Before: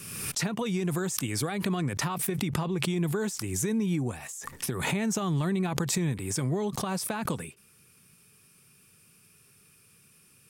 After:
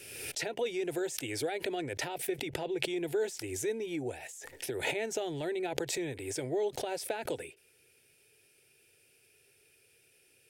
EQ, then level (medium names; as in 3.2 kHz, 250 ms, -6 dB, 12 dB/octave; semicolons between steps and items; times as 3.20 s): tone controls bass -11 dB, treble -11 dB; static phaser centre 470 Hz, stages 4; +3.0 dB